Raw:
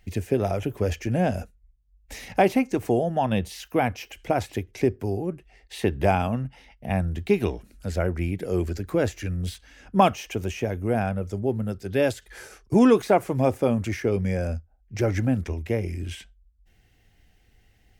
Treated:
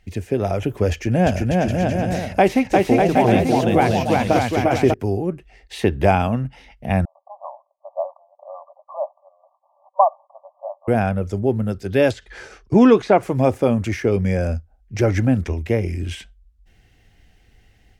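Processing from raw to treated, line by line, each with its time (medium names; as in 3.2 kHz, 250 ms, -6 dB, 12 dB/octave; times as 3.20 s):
0.91–4.94 s: bouncing-ball echo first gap 350 ms, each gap 0.7×, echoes 5, each echo -2 dB
7.05–10.88 s: brick-wall FIR band-pass 550–1200 Hz
12.11–13.23 s: low-pass 5.4 kHz
whole clip: treble shelf 12 kHz -10.5 dB; level rider gain up to 5 dB; trim +1 dB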